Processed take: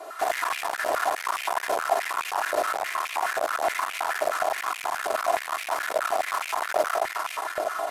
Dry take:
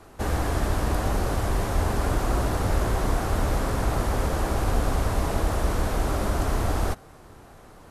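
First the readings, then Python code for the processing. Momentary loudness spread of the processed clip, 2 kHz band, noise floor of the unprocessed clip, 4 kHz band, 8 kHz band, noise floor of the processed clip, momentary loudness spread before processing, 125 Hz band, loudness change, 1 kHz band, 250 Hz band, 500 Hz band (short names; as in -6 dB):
3 LU, +6.5 dB, -49 dBFS, +2.5 dB, +1.0 dB, -37 dBFS, 1 LU, under -35 dB, -0.5 dB, +5.0 dB, -17.0 dB, +1.5 dB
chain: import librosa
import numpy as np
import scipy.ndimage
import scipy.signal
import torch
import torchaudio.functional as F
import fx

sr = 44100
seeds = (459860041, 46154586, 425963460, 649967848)

y = fx.high_shelf(x, sr, hz=9200.0, db=3.0)
y = y + 0.97 * np.pad(y, (int(2.9 * sr / 1000.0), 0))[:len(y)]
y = fx.echo_feedback(y, sr, ms=406, feedback_pct=46, wet_db=-12)
y = fx.rider(y, sr, range_db=10, speed_s=0.5)
y = fx.rev_freeverb(y, sr, rt60_s=0.86, hf_ratio=0.8, predelay_ms=25, drr_db=-0.5)
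y = 10.0 ** (-21.5 / 20.0) * np.tanh(y / 10.0 ** (-21.5 / 20.0))
y = fx.filter_held_highpass(y, sr, hz=9.5, low_hz=590.0, high_hz=2400.0)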